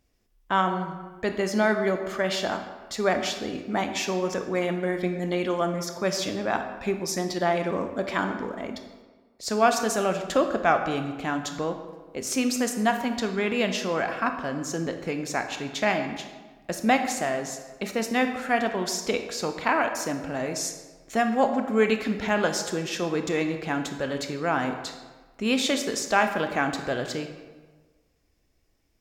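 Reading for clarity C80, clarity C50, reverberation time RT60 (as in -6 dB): 9.5 dB, 8.0 dB, 1.4 s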